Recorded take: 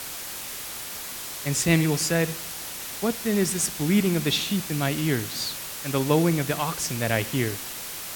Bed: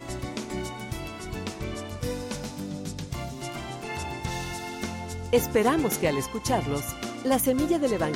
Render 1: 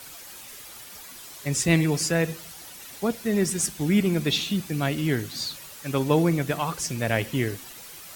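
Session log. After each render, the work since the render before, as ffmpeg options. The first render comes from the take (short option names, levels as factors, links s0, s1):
-af "afftdn=nr=10:nf=-36"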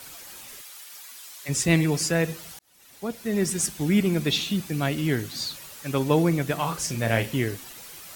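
-filter_complex "[0:a]asplit=3[s0][s1][s2];[s0]afade=t=out:st=0.6:d=0.02[s3];[s1]highpass=f=1500:p=1,afade=t=in:st=0.6:d=0.02,afade=t=out:st=1.48:d=0.02[s4];[s2]afade=t=in:st=1.48:d=0.02[s5];[s3][s4][s5]amix=inputs=3:normalize=0,asettb=1/sr,asplit=3[s6][s7][s8];[s6]atrim=end=6.554[s9];[s7]atrim=start=6.55:end=7.37,asetpts=PTS-STARTPTS,afade=t=in:d=0.004:c=qsin,afade=t=out:st=0.816:d=0.004:c=qsin,asplit=2[s10][s11];[s11]adelay=35,volume=0.422[s12];[s10][s12]amix=inputs=2:normalize=0,atrim=end_sample=36162[s13];[s8]atrim=start=7.366[s14];[s9][s13]acrossfade=d=0.004:c1=hsin:c2=qsin[s15];[s15][s14]acrossfade=d=0.004:c1=qsin:c2=hsin,asplit=2[s16][s17];[s16]atrim=end=2.59,asetpts=PTS-STARTPTS,afade=t=out:st=2.586:d=0.004:c=hsin[s18];[s17]atrim=start=2.59,asetpts=PTS-STARTPTS,afade=t=in:d=0.92[s19];[s18][s19]concat=n=2:v=0:a=1"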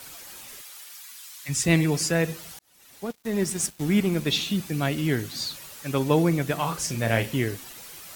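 -filter_complex "[0:a]asettb=1/sr,asplit=3[s0][s1][s2];[s0]atrim=end=0.924[s3];[s1]atrim=start=0.92:end=1.64,asetpts=PTS-STARTPTS,afade=t=in:d=0.004:c=qsin,afade=t=out:st=0.716:d=0.004:c=qsin,equalizer=f=480:t=o:w=1.1:g=-14.5[s4];[s2]atrim=start=1.636[s5];[s3][s4]acrossfade=d=0.004:c1=hsin:c2=qsin[s6];[s6][s5]acrossfade=d=0.004:c1=qsin:c2=hsin,asettb=1/sr,asplit=3[s7][s8][s9];[s7]atrim=end=3.054[s10];[s8]atrim=start=3.05:end=4.31,asetpts=PTS-STARTPTS,afade=t=in:d=0.004:c=qsin,afade=t=out:st=1.256:d=0.004:c=qsin,aeval=exprs='sgn(val(0))*max(abs(val(0))-0.0106,0)':c=same[s11];[s9]atrim=start=4.306[s12];[s10][s11]acrossfade=d=0.004:c1=hsin:c2=qsin[s13];[s13][s12]acrossfade=d=0.004:c1=qsin:c2=hsin"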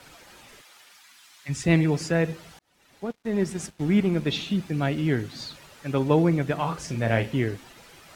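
-af "aemphasis=mode=reproduction:type=75fm,bandreject=f=1100:w=24"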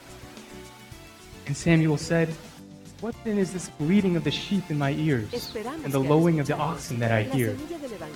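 -filter_complex "[1:a]volume=0.282[s0];[0:a][s0]amix=inputs=2:normalize=0"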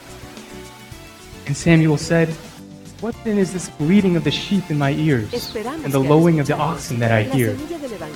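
-af "volume=2.24"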